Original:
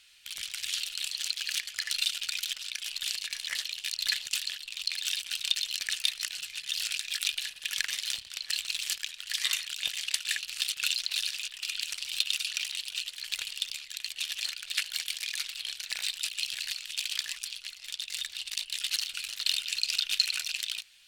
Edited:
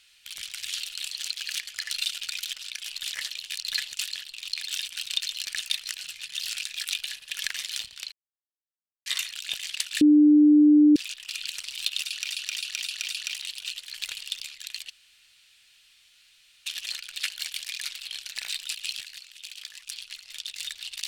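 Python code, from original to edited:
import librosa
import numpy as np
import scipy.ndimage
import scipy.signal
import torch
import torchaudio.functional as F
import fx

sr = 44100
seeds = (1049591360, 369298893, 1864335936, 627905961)

y = fx.edit(x, sr, fx.cut(start_s=3.11, length_s=0.34),
    fx.silence(start_s=8.46, length_s=0.94),
    fx.bleep(start_s=10.35, length_s=0.95, hz=298.0, db=-12.5),
    fx.repeat(start_s=12.4, length_s=0.26, count=5),
    fx.insert_room_tone(at_s=14.2, length_s=1.76),
    fx.clip_gain(start_s=16.57, length_s=0.84, db=-8.5), tone=tone)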